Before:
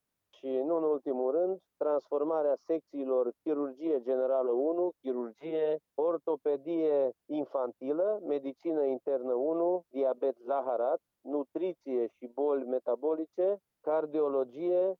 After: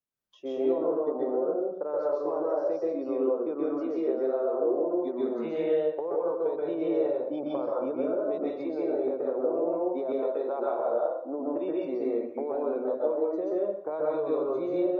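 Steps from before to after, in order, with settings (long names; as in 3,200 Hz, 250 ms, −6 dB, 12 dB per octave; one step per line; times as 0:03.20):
noise reduction from a noise print of the clip's start 16 dB
downward compressor, threshold −34 dBFS, peak gain reduction 9.5 dB
dense smooth reverb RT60 0.7 s, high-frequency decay 0.8×, pre-delay 115 ms, DRR −5 dB
level +3.5 dB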